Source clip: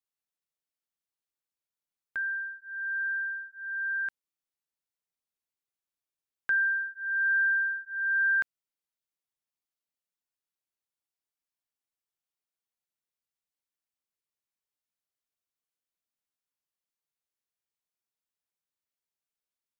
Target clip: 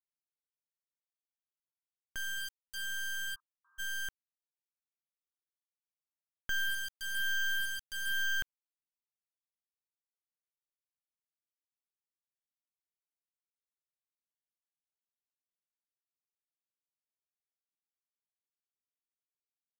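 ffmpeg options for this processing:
ffmpeg -i in.wav -filter_complex "[0:a]acrusher=bits=3:dc=4:mix=0:aa=0.000001,asplit=3[link_01][link_02][link_03];[link_01]afade=type=out:start_time=3.34:duration=0.02[link_04];[link_02]asuperpass=centerf=1100:order=8:qfactor=3.3,afade=type=in:start_time=3.34:duration=0.02,afade=type=out:start_time=3.78:duration=0.02[link_05];[link_03]afade=type=in:start_time=3.78:duration=0.02[link_06];[link_04][link_05][link_06]amix=inputs=3:normalize=0,volume=-3dB" out.wav

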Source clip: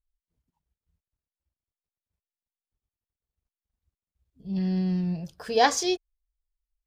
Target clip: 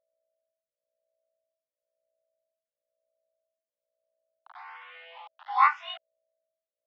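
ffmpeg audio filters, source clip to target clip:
ffmpeg -i in.wav -filter_complex "[0:a]afftfilt=real='re':imag='-im':win_size=2048:overlap=0.75,aeval=exprs='val(0)*gte(abs(val(0)),0.0106)':channel_layout=same,afreqshift=-16,aeval=exprs='val(0)+0.001*(sin(2*PI*60*n/s)+sin(2*PI*2*60*n/s)/2+sin(2*PI*3*60*n/s)/3+sin(2*PI*4*60*n/s)/4+sin(2*PI*5*60*n/s)/5)':channel_layout=same,highpass=frequency=410:width_type=q:width=0.5412,highpass=frequency=410:width_type=q:width=1.307,lowpass=frequency=3000:width_type=q:width=0.5176,lowpass=frequency=3000:width_type=q:width=0.7071,lowpass=frequency=3000:width_type=q:width=1.932,afreqshift=350,asplit=2[link_01][link_02];[link_02]afreqshift=1[link_03];[link_01][link_03]amix=inputs=2:normalize=1,volume=5.5dB" out.wav

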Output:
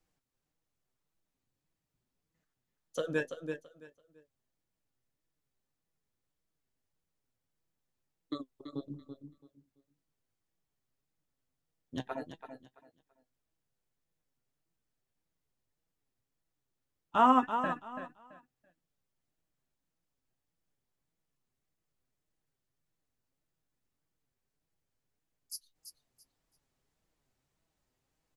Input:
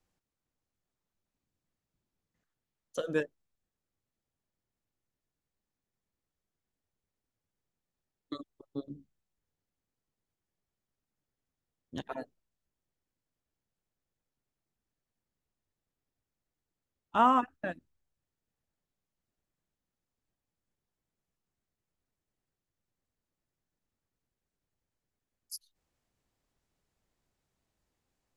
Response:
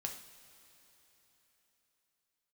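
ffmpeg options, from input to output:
-af "aecho=1:1:334|668|1002:0.355|0.0816|0.0188,flanger=delay=6.1:depth=1.8:regen=53:speed=1.7:shape=sinusoidal,volume=4dB"

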